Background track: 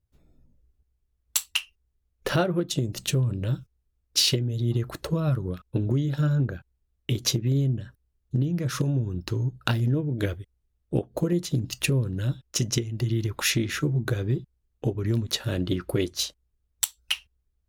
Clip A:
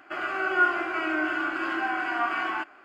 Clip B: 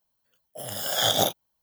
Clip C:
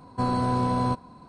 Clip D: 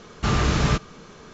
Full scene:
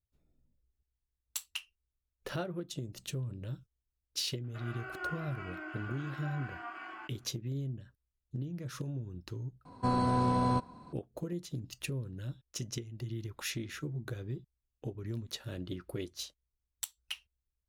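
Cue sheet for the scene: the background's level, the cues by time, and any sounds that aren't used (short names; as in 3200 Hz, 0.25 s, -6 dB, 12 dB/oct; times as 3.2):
background track -13.5 dB
4.44 add A -17 dB
9.65 replace with C -4 dB
not used: B, D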